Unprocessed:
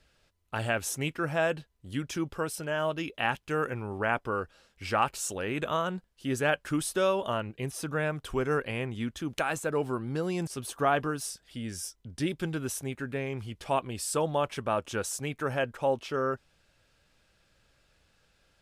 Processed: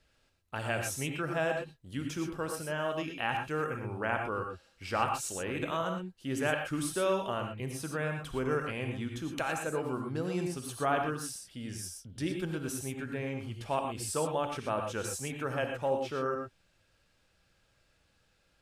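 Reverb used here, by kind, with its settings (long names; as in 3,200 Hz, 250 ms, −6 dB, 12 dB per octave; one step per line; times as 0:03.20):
reverb whose tail is shaped and stops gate 140 ms rising, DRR 3.5 dB
level −4.5 dB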